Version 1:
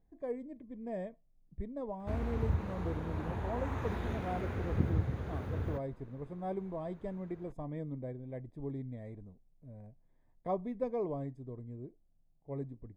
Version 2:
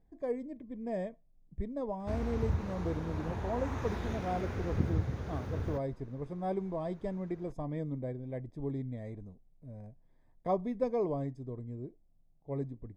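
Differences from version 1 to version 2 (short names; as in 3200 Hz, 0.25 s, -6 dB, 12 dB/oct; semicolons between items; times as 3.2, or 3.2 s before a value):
speech +3.5 dB; master: add bell 5500 Hz +10 dB 0.66 oct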